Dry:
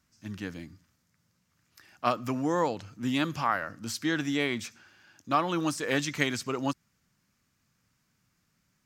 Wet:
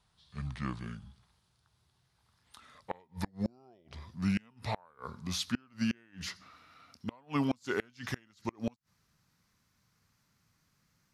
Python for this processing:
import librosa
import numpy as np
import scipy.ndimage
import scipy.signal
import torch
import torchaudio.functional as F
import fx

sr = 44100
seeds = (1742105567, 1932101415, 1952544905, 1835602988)

y = fx.speed_glide(x, sr, from_pct=67, to_pct=92)
y = fx.gate_flip(y, sr, shuts_db=-19.0, range_db=-33)